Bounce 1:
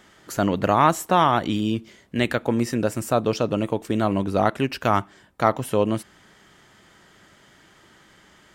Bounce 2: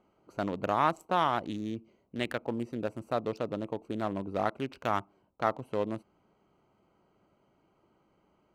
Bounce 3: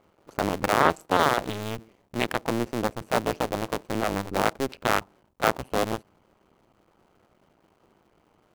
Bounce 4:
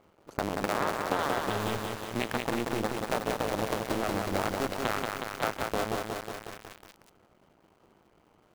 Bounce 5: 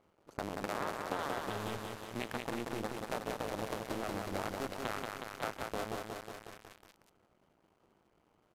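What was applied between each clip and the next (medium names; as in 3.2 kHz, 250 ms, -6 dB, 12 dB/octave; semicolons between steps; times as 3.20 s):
local Wiener filter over 25 samples; bass shelf 270 Hz -7 dB; trim -8 dB
cycle switcher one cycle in 2, muted; trim +9 dB
compression 4:1, threshold -27 dBFS, peak gain reduction 12 dB; bit-crushed delay 183 ms, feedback 80%, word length 7-bit, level -3 dB
resampled via 32 kHz; trim -8 dB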